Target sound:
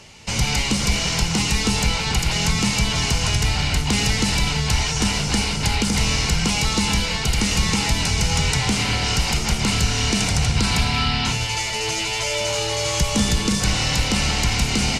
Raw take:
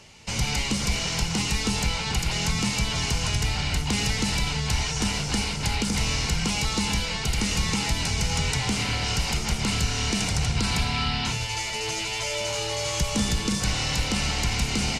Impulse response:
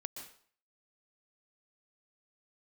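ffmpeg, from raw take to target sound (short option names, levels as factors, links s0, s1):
-filter_complex "[0:a]asplit=2[s0][s1];[1:a]atrim=start_sample=2205,afade=t=out:st=0.2:d=0.01,atrim=end_sample=9261,asetrate=29106,aresample=44100[s2];[s1][s2]afir=irnorm=-1:irlink=0,volume=0.531[s3];[s0][s3]amix=inputs=2:normalize=0,volume=1.26"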